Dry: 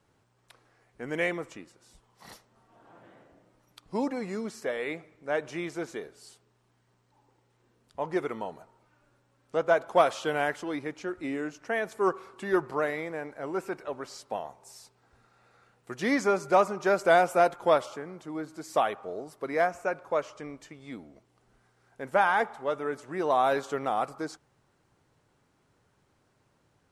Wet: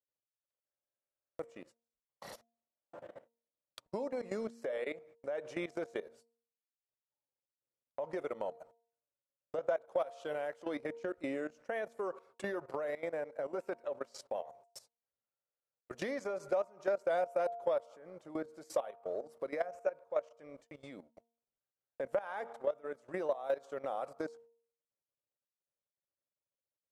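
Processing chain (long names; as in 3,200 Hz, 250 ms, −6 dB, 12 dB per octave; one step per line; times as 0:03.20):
parametric band 560 Hz +13.5 dB 0.42 octaves
transient designer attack 0 dB, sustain −8 dB
low-shelf EQ 230 Hz −4 dB
output level in coarse steps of 17 dB
noise gate −59 dBFS, range −37 dB
hum removal 232.1 Hz, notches 4
downward compressor 3 to 1, threshold −38 dBFS, peak gain reduction 16.5 dB
buffer that repeats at 0:00.65, samples 2,048, times 15
level +2.5 dB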